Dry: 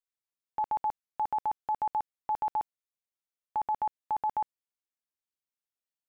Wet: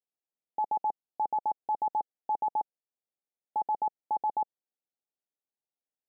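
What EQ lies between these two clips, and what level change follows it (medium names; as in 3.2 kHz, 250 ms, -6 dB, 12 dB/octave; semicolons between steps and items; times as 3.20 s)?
high-pass 220 Hz 12 dB/octave; elliptic low-pass 840 Hz, stop band 40 dB; +2.5 dB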